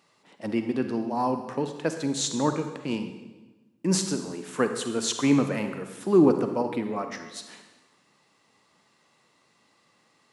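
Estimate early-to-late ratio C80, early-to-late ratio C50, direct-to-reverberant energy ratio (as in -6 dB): 9.5 dB, 7.5 dB, 7.0 dB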